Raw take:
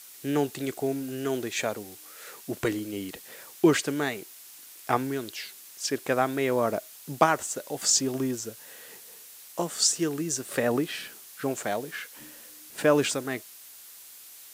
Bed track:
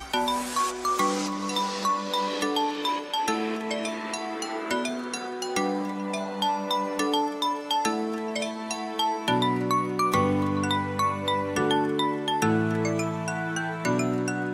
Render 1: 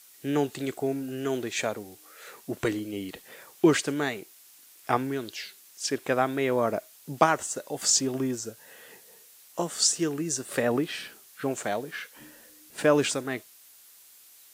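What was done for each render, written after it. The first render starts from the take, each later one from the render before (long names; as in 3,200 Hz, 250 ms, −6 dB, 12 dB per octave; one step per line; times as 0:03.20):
noise reduction from a noise print 6 dB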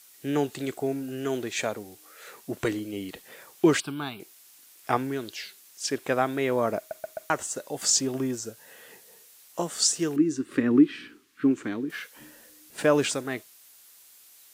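0:03.80–0:04.20: phaser with its sweep stopped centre 1,900 Hz, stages 6
0:06.78: stutter in place 0.13 s, 4 plays
0:10.16–0:11.90: drawn EQ curve 190 Hz 0 dB, 290 Hz +14 dB, 660 Hz −19 dB, 1,100 Hz −3 dB, 2,300 Hz −3 dB, 12,000 Hz −18 dB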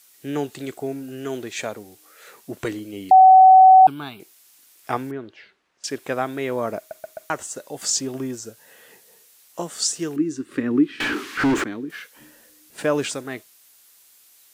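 0:03.11–0:03.87: beep over 755 Hz −6 dBFS
0:05.11–0:05.84: low-pass filter 1,700 Hz
0:11.00–0:11.64: mid-hump overdrive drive 43 dB, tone 1,700 Hz, clips at −12 dBFS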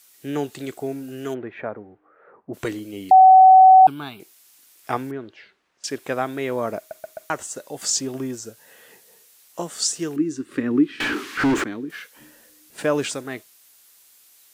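0:01.33–0:02.53: low-pass filter 2,200 Hz → 1,100 Hz 24 dB per octave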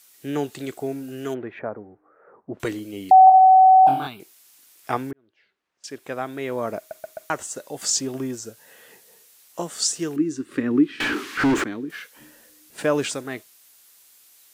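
0:01.59–0:02.60: low-pass filter 1,500 Hz
0:03.25–0:04.07: flutter between parallel walls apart 3.8 metres, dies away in 0.48 s
0:05.13–0:06.95: fade in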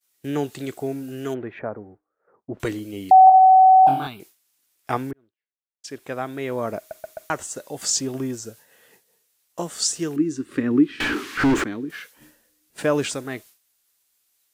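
low-shelf EQ 96 Hz +9 dB
downward expander −43 dBFS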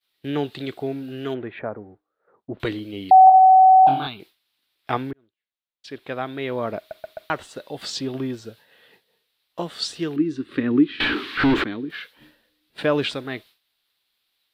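high shelf with overshoot 5,100 Hz −10.5 dB, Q 3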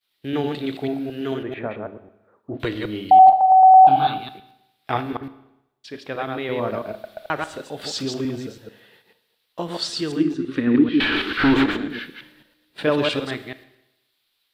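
delay that plays each chunk backwards 110 ms, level −3 dB
four-comb reverb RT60 0.89 s, combs from 26 ms, DRR 12.5 dB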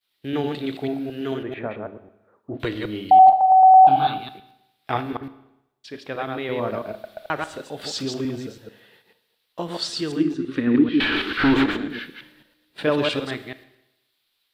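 level −1 dB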